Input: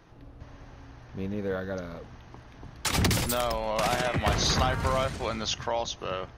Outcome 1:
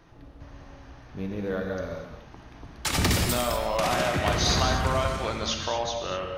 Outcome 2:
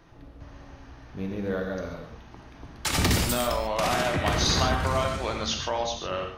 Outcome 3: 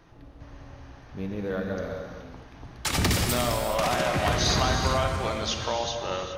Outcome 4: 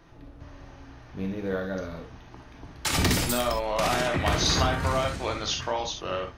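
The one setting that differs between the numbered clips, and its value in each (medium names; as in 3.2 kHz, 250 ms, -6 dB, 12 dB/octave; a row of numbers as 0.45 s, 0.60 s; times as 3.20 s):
gated-style reverb, gate: 270 ms, 170 ms, 450 ms, 90 ms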